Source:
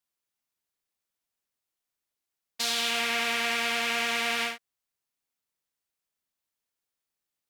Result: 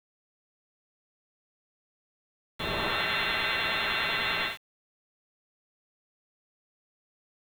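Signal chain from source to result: frequency inversion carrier 3.9 kHz; formant shift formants +2 st; word length cut 8-bit, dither none

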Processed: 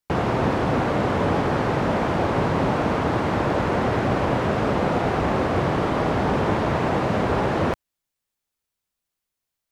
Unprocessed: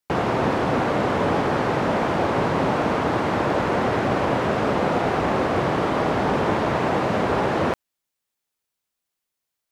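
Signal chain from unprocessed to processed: bass shelf 120 Hz +9.5 dB; trim -1.5 dB

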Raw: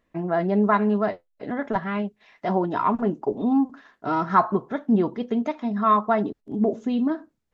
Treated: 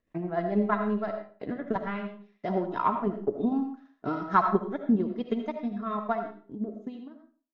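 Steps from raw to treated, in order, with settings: fade out at the end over 2.15 s; rotary cabinet horn 6.7 Hz, later 1.2 Hz, at 0.66 s; transient shaper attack +8 dB, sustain -8 dB; reverberation RT60 0.45 s, pre-delay 35 ms, DRR 5.5 dB; trim -7 dB

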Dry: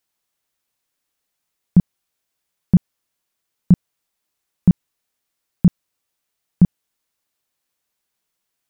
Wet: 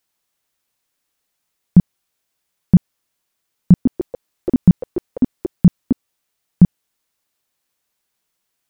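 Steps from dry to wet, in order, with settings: 3.71–6.64 s: ever faster or slower copies 143 ms, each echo +6 st, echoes 3, each echo -6 dB; trim +3 dB

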